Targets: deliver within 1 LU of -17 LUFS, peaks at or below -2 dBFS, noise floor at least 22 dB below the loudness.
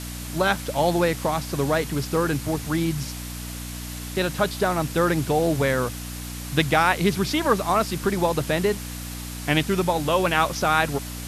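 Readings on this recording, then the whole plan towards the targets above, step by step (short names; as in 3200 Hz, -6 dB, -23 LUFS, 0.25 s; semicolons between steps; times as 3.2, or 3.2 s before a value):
hum 60 Hz; harmonics up to 300 Hz; hum level -33 dBFS; noise floor -34 dBFS; noise floor target -46 dBFS; loudness -23.5 LUFS; peak -5.5 dBFS; loudness target -17.0 LUFS
-> de-hum 60 Hz, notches 5; noise print and reduce 12 dB; gain +6.5 dB; limiter -2 dBFS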